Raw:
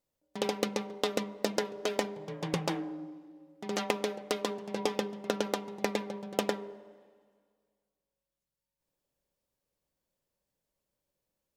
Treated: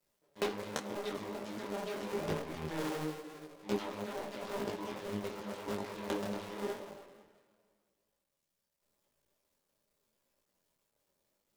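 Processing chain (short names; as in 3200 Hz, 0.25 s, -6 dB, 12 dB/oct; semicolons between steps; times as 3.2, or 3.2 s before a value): cycle switcher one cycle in 2, muted; low shelf 150 Hz -6 dB; notch 740 Hz, Q 12; auto swell 0.181 s; flange 1.2 Hz, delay 6.9 ms, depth 8.8 ms, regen +67%; on a send at -12 dB: reverb RT60 0.75 s, pre-delay 5 ms; on the sum: detuned doubles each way 30 cents; gain +16.5 dB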